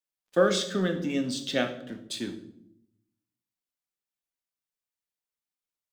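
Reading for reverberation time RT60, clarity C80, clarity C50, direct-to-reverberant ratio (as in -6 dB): 0.75 s, 14.5 dB, 11.5 dB, 6.0 dB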